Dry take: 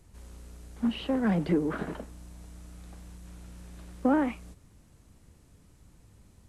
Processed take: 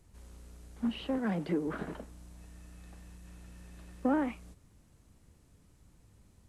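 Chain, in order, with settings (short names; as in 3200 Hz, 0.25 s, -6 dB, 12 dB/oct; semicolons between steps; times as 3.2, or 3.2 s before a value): 1.18–1.67 HPF 170 Hz 6 dB/oct; 2.37–4.11 small resonant body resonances 1800/2600 Hz, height 13 dB -> 10 dB; gain -4.5 dB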